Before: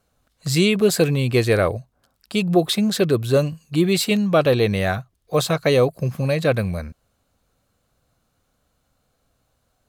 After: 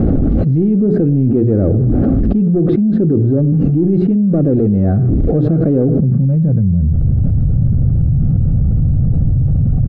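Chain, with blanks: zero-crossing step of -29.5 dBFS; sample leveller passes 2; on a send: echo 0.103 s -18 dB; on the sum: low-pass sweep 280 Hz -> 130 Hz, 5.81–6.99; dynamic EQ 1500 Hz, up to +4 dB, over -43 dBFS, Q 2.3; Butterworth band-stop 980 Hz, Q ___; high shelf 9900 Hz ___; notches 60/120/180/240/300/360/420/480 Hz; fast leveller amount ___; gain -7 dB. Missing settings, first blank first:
3.9, -6.5 dB, 100%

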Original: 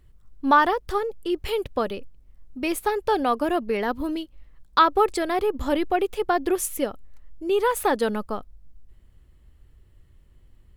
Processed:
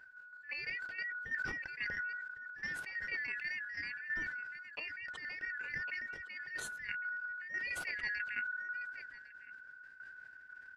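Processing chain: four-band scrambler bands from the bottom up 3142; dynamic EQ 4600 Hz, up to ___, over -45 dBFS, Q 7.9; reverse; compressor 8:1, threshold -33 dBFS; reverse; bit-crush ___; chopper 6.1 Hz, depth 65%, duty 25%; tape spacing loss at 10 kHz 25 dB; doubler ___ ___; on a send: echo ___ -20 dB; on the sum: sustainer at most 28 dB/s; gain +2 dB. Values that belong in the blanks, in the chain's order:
+5 dB, 11-bit, 13 ms, -13.5 dB, 1.105 s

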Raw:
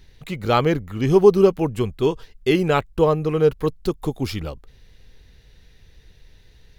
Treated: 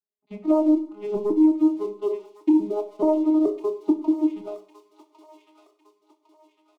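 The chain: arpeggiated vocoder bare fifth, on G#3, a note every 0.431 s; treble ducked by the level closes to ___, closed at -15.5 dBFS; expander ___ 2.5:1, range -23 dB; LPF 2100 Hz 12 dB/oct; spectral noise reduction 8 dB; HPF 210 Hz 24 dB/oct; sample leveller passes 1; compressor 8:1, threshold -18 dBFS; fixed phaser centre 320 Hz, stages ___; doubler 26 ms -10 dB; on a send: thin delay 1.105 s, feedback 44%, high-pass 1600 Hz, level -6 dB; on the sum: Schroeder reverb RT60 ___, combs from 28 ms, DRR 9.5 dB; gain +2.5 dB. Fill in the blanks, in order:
340 Hz, -42 dBFS, 8, 0.57 s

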